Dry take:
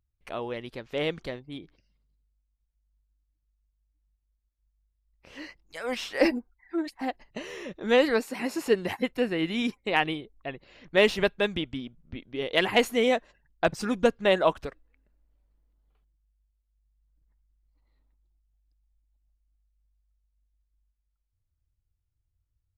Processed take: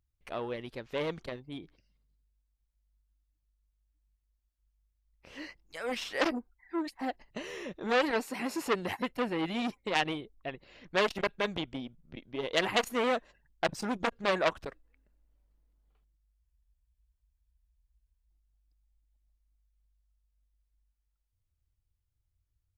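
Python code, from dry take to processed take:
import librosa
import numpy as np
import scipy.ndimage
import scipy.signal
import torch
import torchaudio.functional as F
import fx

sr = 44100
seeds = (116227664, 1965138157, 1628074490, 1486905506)

y = fx.spec_freeze(x, sr, seeds[0], at_s=16.45, hold_s=1.83)
y = fx.transformer_sat(y, sr, knee_hz=2300.0)
y = y * librosa.db_to_amplitude(-1.5)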